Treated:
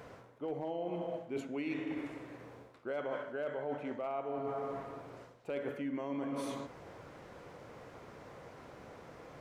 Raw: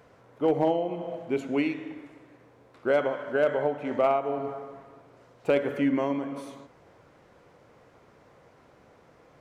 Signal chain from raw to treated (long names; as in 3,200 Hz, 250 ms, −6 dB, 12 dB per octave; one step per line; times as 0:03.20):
brickwall limiter −18 dBFS, peak gain reduction 4.5 dB
reversed playback
downward compressor 12 to 1, threshold −40 dBFS, peak gain reduction 18 dB
reversed playback
level +5 dB